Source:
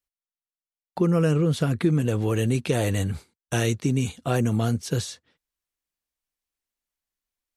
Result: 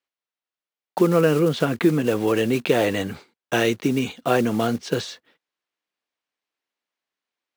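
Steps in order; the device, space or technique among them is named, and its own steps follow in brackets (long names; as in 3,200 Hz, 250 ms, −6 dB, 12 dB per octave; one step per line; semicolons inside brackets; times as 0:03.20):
early digital voice recorder (band-pass filter 270–3,800 Hz; one scale factor per block 5 bits)
level +7 dB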